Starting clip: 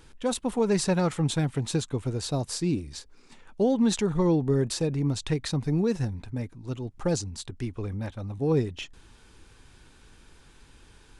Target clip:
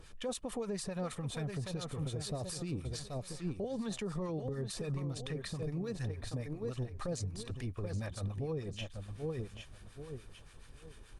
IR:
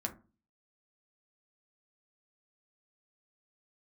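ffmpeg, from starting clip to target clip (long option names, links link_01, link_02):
-filter_complex "[0:a]asettb=1/sr,asplit=3[link_01][link_02][link_03];[link_01]atrim=end=1.504[link_04];[link_02]atrim=start=1.5:end=2.09,asetpts=PTS-STARTPTS,afade=type=in:duration=0.004:curve=qsin,afade=type=out:start_time=0.586:duration=0.004:curve=qsin,equalizer=frequency=8300:width_type=o:width=0.38:gain=-9.5[link_05];[link_03]atrim=start=2.086[link_06];[link_04][link_05]acrossfade=duration=0.004:curve1=hsin:curve2=qsin[link_07];[link_07][link_06]acrossfade=duration=0.004:curve1=qsin:curve2=hsin,asettb=1/sr,asplit=3[link_08][link_09][link_10];[link_08]atrim=end=3.644[link_11];[link_09]atrim=start=3.64:end=4.49,asetpts=PTS-STARTPTS,afade=type=in:duration=0.004:curve=qsin,afade=type=out:start_time=0.846:duration=0.004:curve=qsin,acrossover=split=160|470[link_12][link_13][link_14];[link_12]acompressor=threshold=-35dB:ratio=4[link_15];[link_13]acompressor=threshold=-27dB:ratio=4[link_16];[link_14]acompressor=threshold=-29dB:ratio=4[link_17];[link_15][link_16][link_17]amix=inputs=3:normalize=0[link_18];[link_10]atrim=start=4.486[link_19];[link_11][link_18]acrossfade=duration=0.004:curve1=hsin:curve2=qsin[link_20];[link_20][link_19]acrossfade=duration=0.004:curve1=qsin:curve2=hsin,aecho=1:1:780|1560|2340:0.355|0.0958|0.0259,acompressor=threshold=-28dB:ratio=4,asplit=3[link_21][link_22][link_23];[link_21]afade=type=out:start_time=6.08:duration=0.02[link_24];[link_22]equalizer=frequency=170:width_type=o:width=0.4:gain=-12,afade=type=in:start_time=6.08:duration=0.02,afade=type=out:start_time=7.03:duration=0.02[link_25];[link_23]afade=type=in:start_time=7.03:duration=0.02[link_26];[link_24][link_25][link_26]amix=inputs=3:normalize=0,aecho=1:1:1.7:0.41,acrossover=split=960[link_27][link_28];[link_27]aeval=exprs='val(0)*(1-0.7/2+0.7/2*cos(2*PI*6.9*n/s))':channel_layout=same[link_29];[link_28]aeval=exprs='val(0)*(1-0.7/2-0.7/2*cos(2*PI*6.9*n/s))':channel_layout=same[link_30];[link_29][link_30]amix=inputs=2:normalize=0,alimiter=level_in=6.5dB:limit=-24dB:level=0:latency=1:release=59,volume=-6.5dB,volume=1dB" -ar 48000 -c:a libopus -b:a 48k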